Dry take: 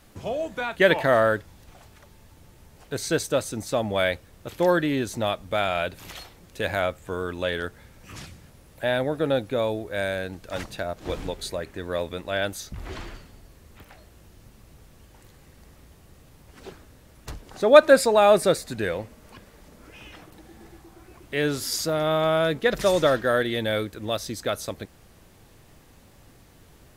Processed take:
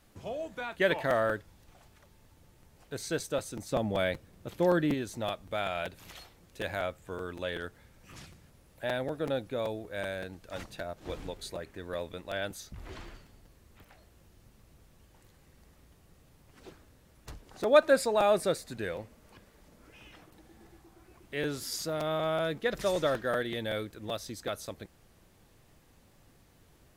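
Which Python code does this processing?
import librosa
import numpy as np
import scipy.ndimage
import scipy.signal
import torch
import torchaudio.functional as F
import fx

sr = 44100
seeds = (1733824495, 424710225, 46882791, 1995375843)

y = fx.peak_eq(x, sr, hz=180.0, db=6.5, octaves=2.8, at=(3.71, 4.94))
y = fx.buffer_crackle(y, sr, first_s=0.53, period_s=0.19, block=256, kind='repeat')
y = F.gain(torch.from_numpy(y), -8.5).numpy()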